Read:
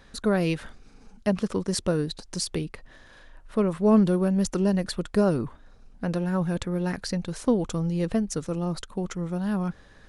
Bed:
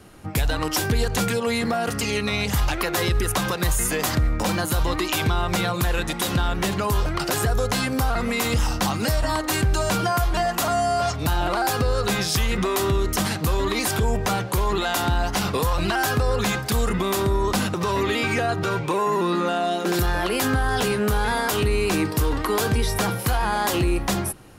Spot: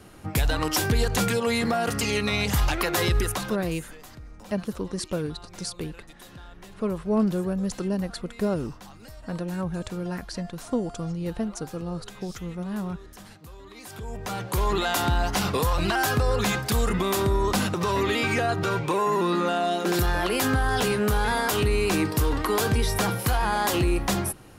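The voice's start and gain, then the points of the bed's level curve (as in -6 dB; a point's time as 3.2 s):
3.25 s, -4.0 dB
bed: 3.2 s -1 dB
3.89 s -23 dB
13.68 s -23 dB
14.63 s -1.5 dB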